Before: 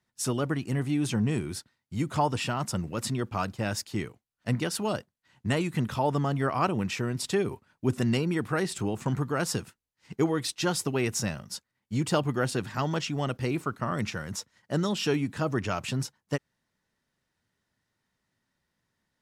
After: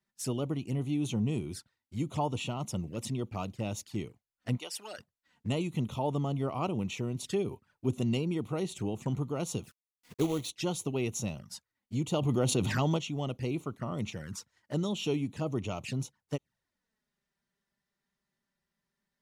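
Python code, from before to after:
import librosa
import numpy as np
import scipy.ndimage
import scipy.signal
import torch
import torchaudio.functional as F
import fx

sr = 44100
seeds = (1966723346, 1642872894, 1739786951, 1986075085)

y = fx.highpass(x, sr, hz=750.0, slope=12, at=(4.56, 4.98), fade=0.02)
y = fx.quant_companded(y, sr, bits=4, at=(9.62, 10.49), fade=0.02)
y = fx.env_flanger(y, sr, rest_ms=5.1, full_db=-28.0)
y = fx.env_flatten(y, sr, amount_pct=70, at=(12.21, 12.96), fade=0.02)
y = y * librosa.db_to_amplitude(-3.5)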